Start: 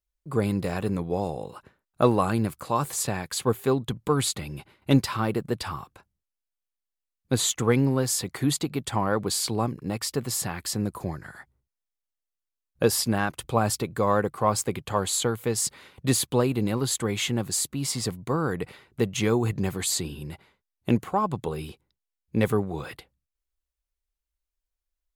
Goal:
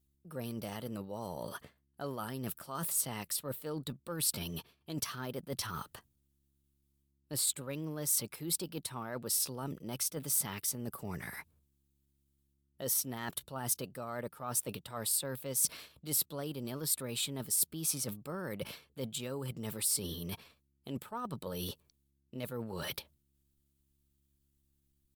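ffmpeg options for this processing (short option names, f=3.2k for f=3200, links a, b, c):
-af "areverse,acompressor=threshold=-37dB:ratio=10,areverse,aeval=exprs='val(0)+0.000158*(sin(2*PI*60*n/s)+sin(2*PI*2*60*n/s)/2+sin(2*PI*3*60*n/s)/3+sin(2*PI*4*60*n/s)/4+sin(2*PI*5*60*n/s)/5)':c=same,asetrate=50951,aresample=44100,atempo=0.865537,aexciter=amount=2.8:drive=1.3:freq=3k"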